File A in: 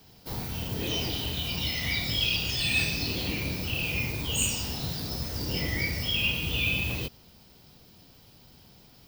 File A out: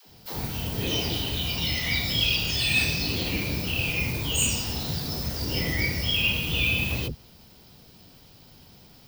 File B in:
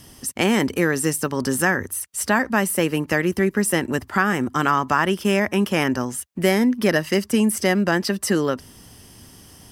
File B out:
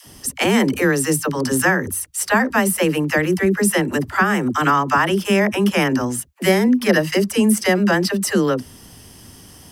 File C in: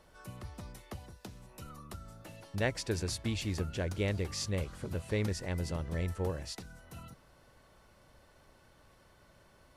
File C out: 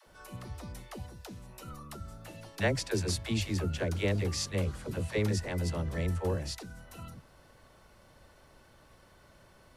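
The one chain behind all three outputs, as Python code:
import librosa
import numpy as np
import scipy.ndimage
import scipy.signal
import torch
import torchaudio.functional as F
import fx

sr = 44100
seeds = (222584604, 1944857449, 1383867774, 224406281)

y = fx.dispersion(x, sr, late='lows', ms=69.0, hz=370.0)
y = y * 10.0 ** (3.0 / 20.0)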